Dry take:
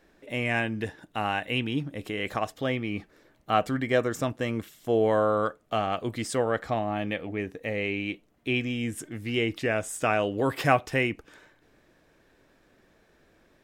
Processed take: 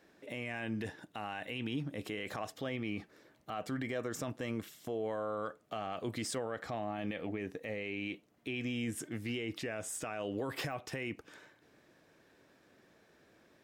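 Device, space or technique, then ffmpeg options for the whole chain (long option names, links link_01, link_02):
broadcast voice chain: -af "highpass=100,deesser=0.65,acompressor=threshold=-27dB:ratio=3,equalizer=frequency=5200:width_type=o:width=0.77:gain=2,alimiter=level_in=1dB:limit=-24dB:level=0:latency=1:release=25,volume=-1dB,volume=-2.5dB"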